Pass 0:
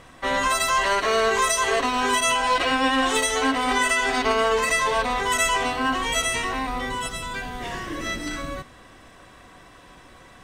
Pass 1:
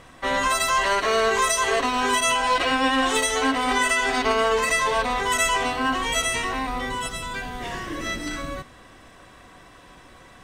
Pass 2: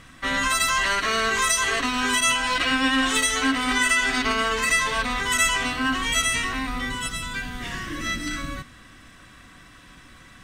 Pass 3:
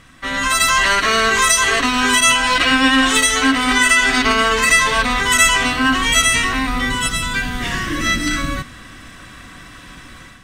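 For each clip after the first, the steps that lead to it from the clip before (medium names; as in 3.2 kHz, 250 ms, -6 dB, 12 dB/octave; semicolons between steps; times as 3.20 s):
no audible change
high-order bell 600 Hz -10 dB; trim +2 dB
level rider gain up to 9 dB; trim +1 dB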